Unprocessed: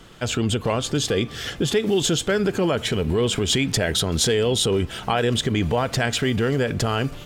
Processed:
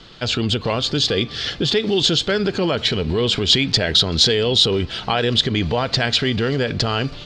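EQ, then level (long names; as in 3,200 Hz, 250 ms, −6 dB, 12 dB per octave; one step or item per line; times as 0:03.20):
low-pass with resonance 4,400 Hz, resonance Q 3.7
+1.0 dB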